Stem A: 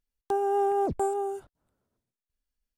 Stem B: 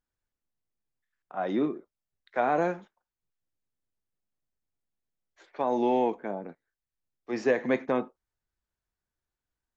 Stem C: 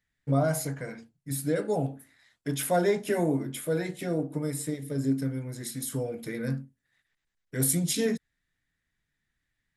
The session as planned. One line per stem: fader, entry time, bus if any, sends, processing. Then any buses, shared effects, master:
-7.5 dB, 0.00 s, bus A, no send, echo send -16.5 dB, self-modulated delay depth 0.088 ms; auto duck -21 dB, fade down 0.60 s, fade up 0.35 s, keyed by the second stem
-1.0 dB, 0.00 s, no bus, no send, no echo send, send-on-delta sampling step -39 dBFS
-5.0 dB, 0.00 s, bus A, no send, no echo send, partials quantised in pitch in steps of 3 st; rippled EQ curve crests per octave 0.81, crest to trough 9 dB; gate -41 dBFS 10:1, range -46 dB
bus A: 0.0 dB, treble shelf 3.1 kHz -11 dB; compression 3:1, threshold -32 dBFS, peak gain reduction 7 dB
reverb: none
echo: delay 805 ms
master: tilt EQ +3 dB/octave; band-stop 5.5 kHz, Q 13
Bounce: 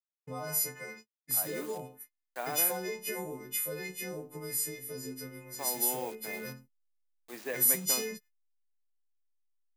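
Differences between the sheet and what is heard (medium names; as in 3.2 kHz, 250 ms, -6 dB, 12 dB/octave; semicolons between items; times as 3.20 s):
stem A: muted; stem B -1.0 dB -> -10.5 dB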